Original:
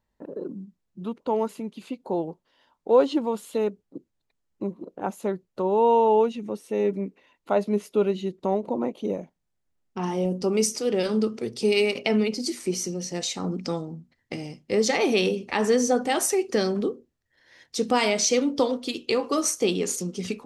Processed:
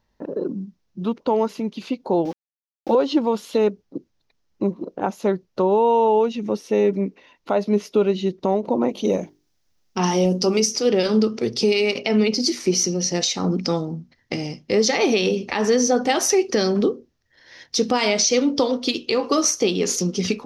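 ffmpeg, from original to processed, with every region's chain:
-filter_complex "[0:a]asettb=1/sr,asplit=3[s0][s1][s2];[s0]atrim=end=2.254[s3];[s1]atrim=start=2.25:end=2.95,asetpts=PTS-STARTPTS,afade=t=in:d=0.004:c=qsin,afade=t=out:st=0.696:d=0.004:c=qsin,bandreject=f=440:w=5.6,aecho=1:1:3.6:0.64,atrim=end_sample=30870,aeval=exprs='val(0)*gte(abs(val(0)),0.00562)':c=same[s4];[s2]atrim=start=2.946[s5];[s3][s4]acrossfade=d=0.004:c1=hsin:c2=qsin[s6];[s6][s5]acrossfade=d=0.004:c1=qsin:c2=hsin,asettb=1/sr,asplit=3[s7][s8][s9];[s7]atrim=end=8.894[s10];[s8]atrim=start=8.89:end=10.6,asetpts=PTS-STARTPTS,afade=t=in:d=0.004:c=qsin,afade=t=out:st=1.706:d=0.004:c=qsin,highshelf=f=3600:g=10.5,bandreject=f=50:t=h:w=6,bandreject=f=100:t=h:w=6,bandreject=f=150:t=h:w=6,bandreject=f=200:t=h:w=6,bandreject=f=250:t=h:w=6,bandreject=f=300:t=h:w=6,bandreject=f=350:t=h:w=6,bandreject=f=400:t=h:w=6,bandreject=f=450:t=h:w=6[s11];[s9]atrim=start=10.596[s12];[s10][s11]acrossfade=d=0.004:c1=hsin:c2=qsin[s13];[s13][s12]acrossfade=d=0.004:c1=qsin:c2=hsin,highshelf=f=6800:t=q:w=3:g=-6,alimiter=limit=0.141:level=0:latency=1:release=272,volume=2.51"

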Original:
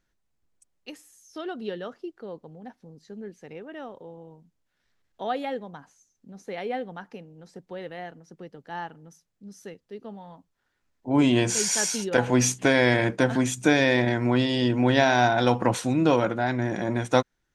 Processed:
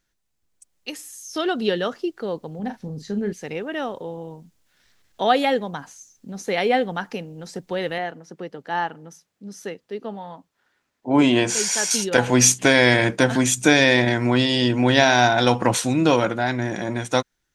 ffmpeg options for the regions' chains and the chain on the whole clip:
-filter_complex "[0:a]asettb=1/sr,asplit=3[s0][s1][s2];[s0]atrim=end=2.594[s3];[s1]atrim=start=2.59:end=3.33,asetpts=PTS-STARTPTS,afade=t=in:d=0.004:c=qsin,afade=t=out:st=0.736:d=0.004:c=qsin,bass=f=250:g=7,treble=f=4000:g=-3,asplit=2[s4][s5];[s5]adelay=39,volume=0.355[s6];[s4][s6]amix=inputs=2:normalize=0,atrim=end_sample=32634[s7];[s2]atrim=start=3.326[s8];[s3][s7]acrossfade=d=0.004:c1=hsin:c2=qsin[s9];[s9][s8]acrossfade=d=0.004:c1=qsin:c2=hsin,asettb=1/sr,asplit=3[s10][s11][s12];[s10]atrim=end=7.984[s13];[s11]atrim=start=7.98:end=11.91,asetpts=PTS-STARTPTS,afade=t=in:d=0.004:c=qsin,afade=t=out:st=3.926:d=0.004:c=qsin,highpass=f=260:p=1,highshelf=f=3400:g=-11[s14];[s12]atrim=start=11.906[s15];[s13][s14]acrossfade=d=0.004:c1=hsin:c2=qsin[s16];[s16][s15]acrossfade=d=0.004:c1=qsin:c2=hsin,highshelf=f=2400:g=8,dynaudnorm=f=110:g=17:m=3.76,volume=0.891"

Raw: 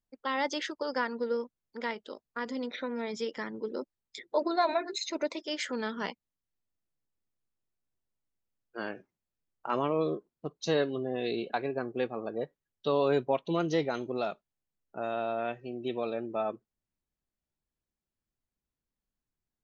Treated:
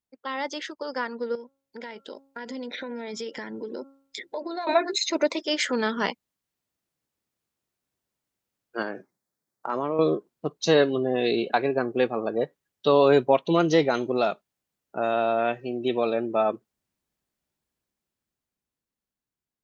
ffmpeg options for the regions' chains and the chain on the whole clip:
-filter_complex "[0:a]asettb=1/sr,asplit=3[s0][s1][s2];[s0]atrim=end=1.354[s3];[s1]atrim=start=1.35:end=4.67,asetpts=PTS-STARTPTS,afade=t=in:d=0.004:c=qsin,afade=t=out:st=3.316:d=0.004:c=qsin,bandreject=f=273.1:t=h:w=4,bandreject=f=546.2:t=h:w=4,bandreject=f=819.3:t=h:w=4,bandreject=f=1092.4:t=h:w=4,bandreject=f=1365.5:t=h:w=4,acompressor=threshold=0.01:ratio=4:attack=3.2:release=140:knee=1:detection=peak,asuperstop=centerf=1200:order=4:qfactor=4.7[s4];[s2]atrim=start=4.666[s5];[s3][s4]acrossfade=d=0.004:c1=hsin:c2=qsin[s6];[s6][s5]acrossfade=d=0.004:c1=qsin:c2=hsin,asettb=1/sr,asplit=3[s7][s8][s9];[s7]atrim=end=8.824[s10];[s8]atrim=start=8.82:end=9.99,asetpts=PTS-STARTPTS,afade=t=in:d=0.004:c=qsin,afade=t=out:st=1.166:d=0.004:c=qsin,highpass=110,acompressor=threshold=0.0158:ratio=2:attack=3.2:release=140:knee=1:detection=peak,equalizer=f=2800:w=2.5:g=-12[s11];[s9]atrim=start=9.986[s12];[s10][s11]acrossfade=d=0.004:c1=hsin:c2=qsin[s13];[s13][s12]acrossfade=d=0.004:c1=qsin:c2=hsin,highpass=f=130:p=1,dynaudnorm=f=410:g=9:m=2.82"

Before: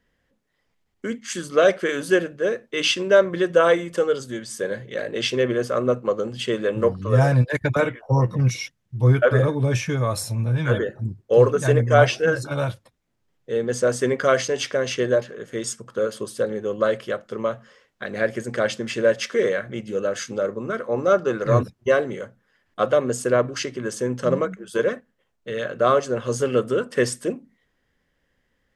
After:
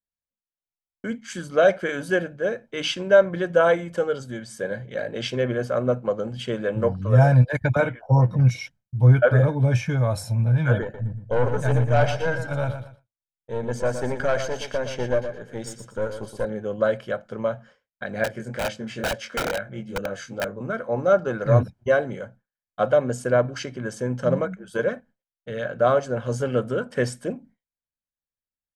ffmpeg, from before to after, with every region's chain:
-filter_complex "[0:a]asettb=1/sr,asplit=3[s0][s1][s2];[s0]atrim=end=10.824[s3];[s1]atrim=start=10.82:end=16.45,asetpts=PTS-STARTPTS,afade=t=in:d=0.004:c=qsin,afade=t=out:st=5.626:d=0.004:c=qsin,aeval=exprs='(tanh(5.62*val(0)+0.5)-tanh(0.5))/5.62':c=same,aecho=1:1:118|236|354:0.355|0.0958|0.0259,atrim=end_sample=248283[s4];[s2]atrim=start=16.446[s5];[s3][s4]acrossfade=d=0.004:c1=hsin:c2=qsin[s6];[s6][s5]acrossfade=d=0.004:c1=qsin:c2=hsin,asettb=1/sr,asplit=3[s7][s8][s9];[s7]atrim=end=18.244[s10];[s8]atrim=start=18.24:end=20.61,asetpts=PTS-STARTPTS,afade=t=in:d=0.004:c=qsin,afade=t=out:st=2.366:d=0.004:c=qsin,flanger=delay=19:depth=4.5:speed=2.2,aeval=exprs='(mod(7.5*val(0)+1,2)-1)/7.5':c=same[s11];[s9]atrim=start=20.606[s12];[s10][s11]acrossfade=d=0.004:c1=hsin:c2=qsin[s13];[s13][s12]acrossfade=d=0.004:c1=qsin:c2=hsin,agate=range=0.0224:threshold=0.00708:ratio=3:detection=peak,highshelf=f=2100:g=-9,aecho=1:1:1.3:0.5"

